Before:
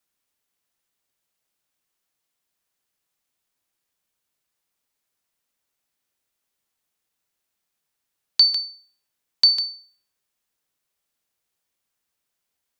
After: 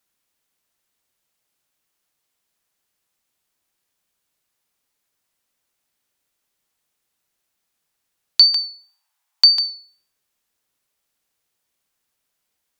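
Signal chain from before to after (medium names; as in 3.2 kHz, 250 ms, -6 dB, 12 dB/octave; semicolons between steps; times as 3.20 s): wow and flutter 23 cents; 8.43–9.67 s: resonant low shelf 570 Hz -13.5 dB, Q 3; trim +4 dB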